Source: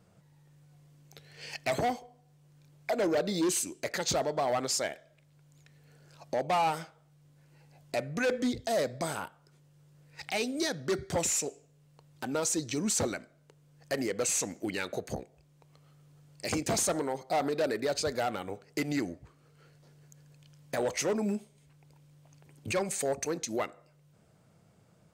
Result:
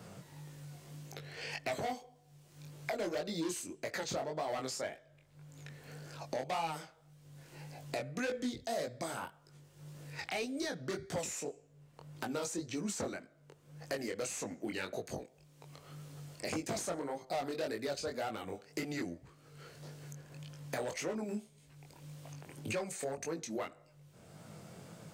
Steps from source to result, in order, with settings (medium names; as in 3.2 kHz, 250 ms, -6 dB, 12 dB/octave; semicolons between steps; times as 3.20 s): chorus 1.8 Hz, delay 18 ms, depth 5.5 ms; three bands compressed up and down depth 70%; trim -3.5 dB